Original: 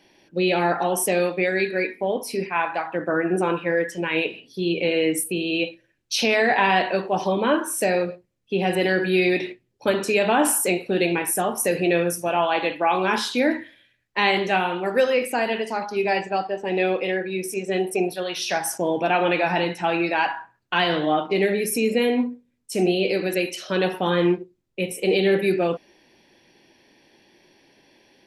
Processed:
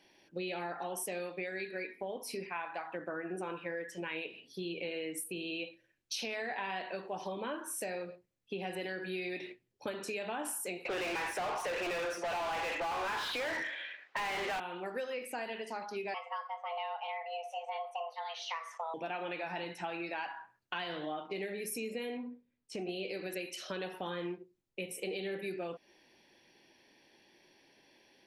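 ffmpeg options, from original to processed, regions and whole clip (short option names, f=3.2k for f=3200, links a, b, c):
-filter_complex "[0:a]asettb=1/sr,asplit=3[a][b][c];[a]atrim=end=10.854[d];[b]atrim=start=10.85:end=14.6,asetpts=PTS-STARTPTS,afade=t=in:d=0.004:c=qsin,afade=t=out:st=3.746:d=0.004:c=qsin,highpass=490,lowpass=3.3k,asplit=2[e][f];[f]highpass=f=720:p=1,volume=38dB,asoftclip=type=tanh:threshold=-8.5dB[g];[e][g]amix=inputs=2:normalize=0,lowpass=f=1.9k:p=1,volume=-6dB[h];[c]atrim=start=14.596[i];[d][h]acrossfade=d=0.004:c1=hsin:c2=qsin[j];[j][i]acrossfade=d=0.004:c1=qsin:c2=hsin,asettb=1/sr,asplit=3[k][l][m];[k]atrim=end=16.144[n];[l]atrim=start=16.14:end=18.94,asetpts=PTS-STARTPTS,afade=t=in:d=0.004:c=qsin,afade=t=out:st=2.796:d=0.004:c=qsin,highpass=120,lowpass=2.7k,afreqshift=330[o];[m]atrim=start=18.936[p];[n][o]acrossfade=d=0.004:c1=hsin:c2=qsin[q];[q][p]acrossfade=d=0.004:c1=qsin:c2=hsin,asettb=1/sr,asplit=3[r][s][t];[r]atrim=end=22.174[u];[s]atrim=start=22.17:end=22.89,asetpts=PTS-STARTPTS,afade=t=in:d=0.004:c=qsin,afade=t=out:st=0.716:d=0.004:c=qsin,lowpass=3.9k,acompressor=threshold=-24dB:ratio=2:attack=3.2:release=140:knee=1:detection=peak[v];[t]atrim=start=22.886[w];[u][v]acrossfade=d=0.004:c1=hsin:c2=qsin[x];[x][w]acrossfade=d=0.004:c1=qsin:c2=hsin,lowshelf=f=410:g=-5,acompressor=threshold=-31dB:ratio=4,volume=-6.5dB"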